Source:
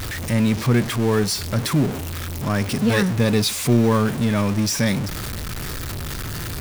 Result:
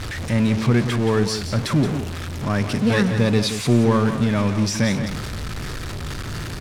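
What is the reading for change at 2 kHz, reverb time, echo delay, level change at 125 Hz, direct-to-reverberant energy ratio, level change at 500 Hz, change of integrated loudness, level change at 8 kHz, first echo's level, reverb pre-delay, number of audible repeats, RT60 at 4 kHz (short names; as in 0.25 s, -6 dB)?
0.0 dB, none, 0.174 s, +0.5 dB, none, +0.5 dB, 0.0 dB, -4.5 dB, -9.5 dB, none, 1, none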